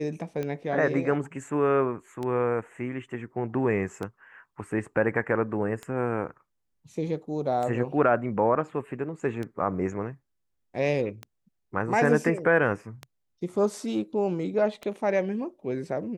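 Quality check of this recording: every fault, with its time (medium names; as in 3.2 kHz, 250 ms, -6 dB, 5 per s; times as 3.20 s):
tick 33 1/3 rpm -20 dBFS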